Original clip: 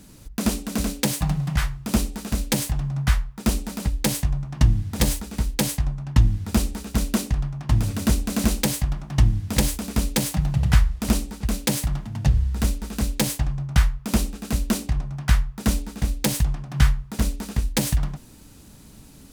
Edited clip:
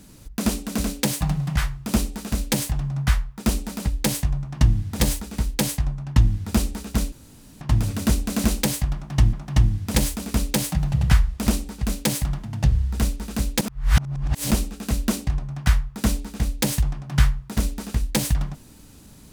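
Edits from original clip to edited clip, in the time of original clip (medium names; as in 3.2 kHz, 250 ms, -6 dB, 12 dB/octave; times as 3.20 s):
7.12–7.61 s: room tone
8.95–9.33 s: loop, 2 plays
13.23–14.13 s: reverse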